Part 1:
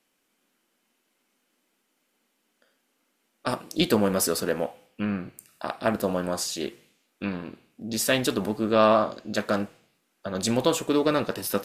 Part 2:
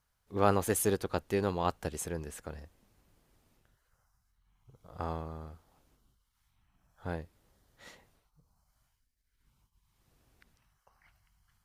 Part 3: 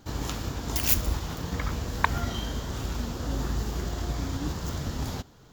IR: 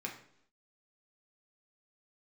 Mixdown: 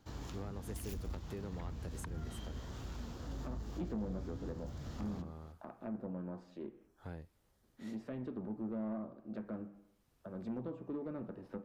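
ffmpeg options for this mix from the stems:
-filter_complex "[0:a]lowpass=1100,volume=-13.5dB,asplit=3[link_01][link_02][link_03];[link_01]atrim=end=6.88,asetpts=PTS-STARTPTS,afade=type=out:start_time=6.876:duration=0.004:curve=hsin[link_04];[link_02]atrim=start=6.88:end=7.63,asetpts=PTS-STARTPTS,volume=0[link_05];[link_03]atrim=start=7.63,asetpts=PTS-STARTPTS,afade=type=in:duration=0.004:curve=hsin[link_06];[link_04][link_05][link_06]concat=n=3:v=0:a=1,asplit=2[link_07][link_08];[link_08]volume=-7.5dB[link_09];[1:a]acompressor=threshold=-33dB:ratio=2.5,volume=-5.5dB[link_10];[2:a]highshelf=frequency=9100:gain=-9,volume=-12dB[link_11];[3:a]atrim=start_sample=2205[link_12];[link_09][link_12]afir=irnorm=-1:irlink=0[link_13];[link_07][link_10][link_11][link_13]amix=inputs=4:normalize=0,acrossover=split=320[link_14][link_15];[link_15]acompressor=threshold=-49dB:ratio=3[link_16];[link_14][link_16]amix=inputs=2:normalize=0,asoftclip=type=tanh:threshold=-33dB"

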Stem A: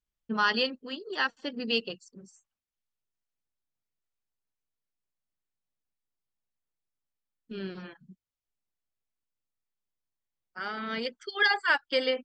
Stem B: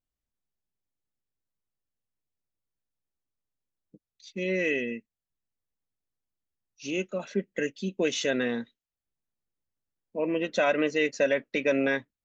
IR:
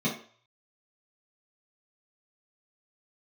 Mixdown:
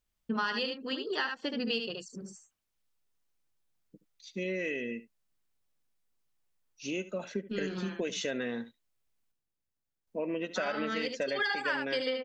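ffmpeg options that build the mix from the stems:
-filter_complex "[0:a]acontrast=36,volume=0dB,asplit=3[link_01][link_02][link_03];[link_01]atrim=end=9.32,asetpts=PTS-STARTPTS,afade=type=out:start_time=9.316:duration=0.004:curve=hsin[link_04];[link_02]atrim=start=9.32:end=10.07,asetpts=PTS-STARTPTS,volume=0[link_05];[link_03]atrim=start=10.07,asetpts=PTS-STARTPTS,afade=type=in:duration=0.004:curve=hsin[link_06];[link_04][link_05][link_06]concat=n=3:v=0:a=1,asplit=2[link_07][link_08];[link_08]volume=-6.5dB[link_09];[1:a]volume=-1.5dB,asplit=2[link_10][link_11];[link_11]volume=-17.5dB[link_12];[link_09][link_12]amix=inputs=2:normalize=0,aecho=0:1:73:1[link_13];[link_07][link_10][link_13]amix=inputs=3:normalize=0,acompressor=threshold=-31dB:ratio=4"

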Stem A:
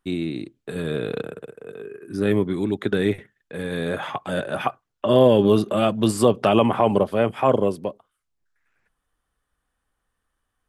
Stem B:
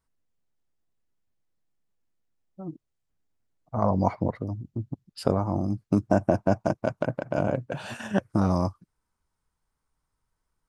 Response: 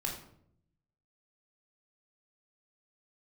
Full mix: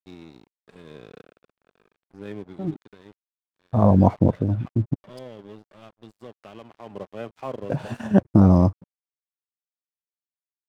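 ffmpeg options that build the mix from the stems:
-filter_complex "[0:a]lowpass=6600,volume=-4.5dB,afade=type=out:start_time=2.55:duration=0.26:silence=0.354813,afade=type=in:start_time=6.8:duration=0.28:silence=0.316228[link_01];[1:a]agate=range=-15dB:threshold=-54dB:ratio=16:detection=peak,tiltshelf=frequency=890:gain=8,volume=2.5dB,asplit=3[link_02][link_03][link_04];[link_02]atrim=end=5.19,asetpts=PTS-STARTPTS,afade=type=out:start_time=5.186:duration=0.004:curve=hsin[link_05];[link_03]atrim=start=5.19:end=7.63,asetpts=PTS-STARTPTS,volume=0[link_06];[link_04]atrim=start=7.63,asetpts=PTS-STARTPTS,afade=type=in:duration=0.004:curve=hsin[link_07];[link_05][link_06][link_07]concat=n=3:v=0:a=1[link_08];[link_01][link_08]amix=inputs=2:normalize=0,aeval=exprs='sgn(val(0))*max(abs(val(0))-0.00473,0)':channel_layout=same"

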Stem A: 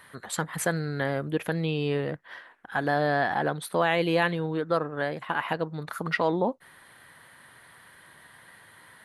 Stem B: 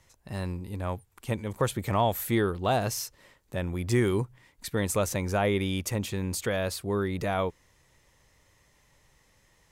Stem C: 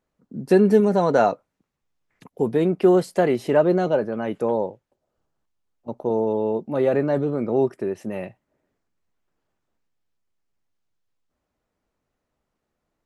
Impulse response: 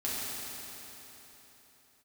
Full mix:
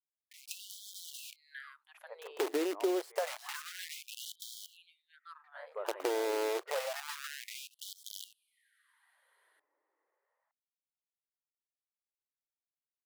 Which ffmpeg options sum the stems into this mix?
-filter_complex "[0:a]adelay=550,volume=-10.5dB,afade=type=out:start_time=1.46:duration=0.34:silence=0.354813[link_01];[1:a]lowpass=frequency=1600:width=0.5412,lowpass=frequency=1600:width=1.3066,adelay=800,volume=-12.5dB[link_02];[2:a]asubboost=boost=2:cutoff=150,acrusher=bits=5:dc=4:mix=0:aa=0.000001,volume=0.5dB[link_03];[link_01][link_02][link_03]amix=inputs=3:normalize=0,acrossover=split=140[link_04][link_05];[link_05]acompressor=threshold=-30dB:ratio=6[link_06];[link_04][link_06]amix=inputs=2:normalize=0,afftfilt=real='re*gte(b*sr/1024,270*pow(3100/270,0.5+0.5*sin(2*PI*0.28*pts/sr)))':imag='im*gte(b*sr/1024,270*pow(3100/270,0.5+0.5*sin(2*PI*0.28*pts/sr)))':win_size=1024:overlap=0.75"

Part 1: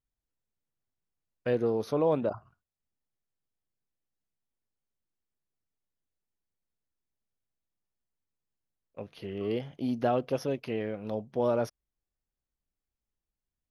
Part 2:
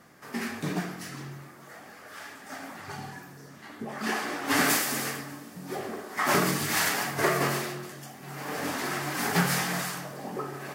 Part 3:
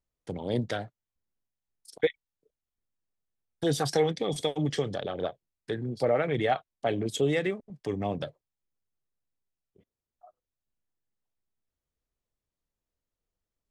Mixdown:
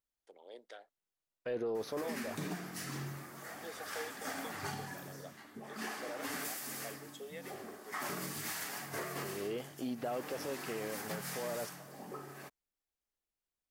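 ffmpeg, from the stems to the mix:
ffmpeg -i stem1.wav -i stem2.wav -i stem3.wav -filter_complex "[0:a]bass=frequency=250:gain=-11,treble=frequency=4000:gain=0,alimiter=level_in=4dB:limit=-24dB:level=0:latency=1:release=10,volume=-4dB,volume=-1dB[link_01];[1:a]highshelf=frequency=6800:gain=6.5,adelay=1750,volume=-1dB,afade=type=out:start_time=5.11:duration=0.35:silence=0.298538[link_02];[2:a]highpass=frequency=410:width=0.5412,highpass=frequency=410:width=1.3066,volume=-18.5dB[link_03];[link_01][link_02][link_03]amix=inputs=3:normalize=0,alimiter=level_in=5dB:limit=-24dB:level=0:latency=1:release=481,volume=-5dB" out.wav

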